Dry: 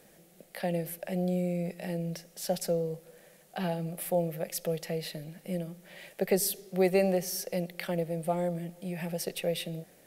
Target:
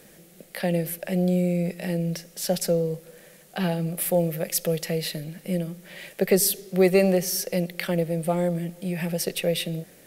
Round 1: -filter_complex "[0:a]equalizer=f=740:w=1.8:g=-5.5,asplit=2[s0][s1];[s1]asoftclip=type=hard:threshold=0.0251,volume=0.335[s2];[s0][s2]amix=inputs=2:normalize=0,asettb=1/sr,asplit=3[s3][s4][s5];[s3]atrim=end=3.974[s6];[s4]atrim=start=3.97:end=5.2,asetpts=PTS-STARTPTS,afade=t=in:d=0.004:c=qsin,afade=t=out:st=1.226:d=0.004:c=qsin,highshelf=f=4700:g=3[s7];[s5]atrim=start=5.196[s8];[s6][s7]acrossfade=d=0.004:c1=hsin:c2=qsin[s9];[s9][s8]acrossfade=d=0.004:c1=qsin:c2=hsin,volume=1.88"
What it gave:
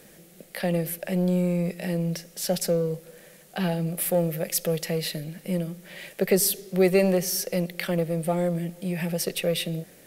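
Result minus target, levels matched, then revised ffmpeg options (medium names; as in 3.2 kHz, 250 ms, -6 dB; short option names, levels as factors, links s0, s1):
hard clipper: distortion +15 dB
-filter_complex "[0:a]equalizer=f=740:w=1.8:g=-5.5,asplit=2[s0][s1];[s1]asoftclip=type=hard:threshold=0.0891,volume=0.335[s2];[s0][s2]amix=inputs=2:normalize=0,asettb=1/sr,asplit=3[s3][s4][s5];[s3]atrim=end=3.974[s6];[s4]atrim=start=3.97:end=5.2,asetpts=PTS-STARTPTS,afade=t=in:d=0.004:c=qsin,afade=t=out:st=1.226:d=0.004:c=qsin,highshelf=f=4700:g=3[s7];[s5]atrim=start=5.196[s8];[s6][s7]acrossfade=d=0.004:c1=hsin:c2=qsin[s9];[s9][s8]acrossfade=d=0.004:c1=qsin:c2=hsin,volume=1.88"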